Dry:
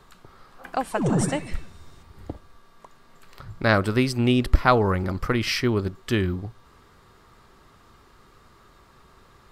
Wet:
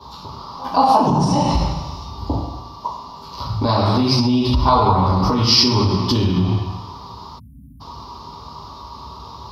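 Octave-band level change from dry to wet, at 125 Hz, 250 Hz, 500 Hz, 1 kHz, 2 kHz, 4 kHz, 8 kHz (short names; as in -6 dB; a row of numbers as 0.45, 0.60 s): +8.0, +6.5, +3.0, +11.0, -6.5, +13.0, +5.5 dB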